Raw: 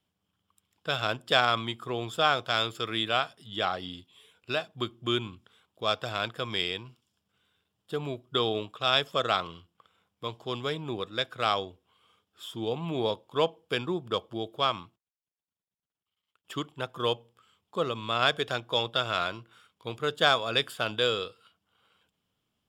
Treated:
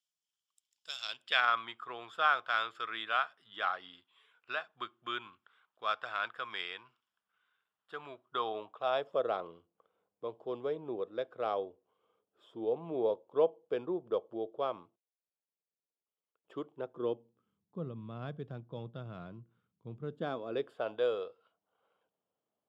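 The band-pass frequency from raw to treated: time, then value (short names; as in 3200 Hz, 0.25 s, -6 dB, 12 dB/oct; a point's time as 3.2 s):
band-pass, Q 1.8
0.96 s 6400 Hz
1.49 s 1400 Hz
8.03 s 1400 Hz
9.25 s 490 Hz
16.66 s 490 Hz
17.8 s 160 Hz
19.95 s 160 Hz
20.91 s 600 Hz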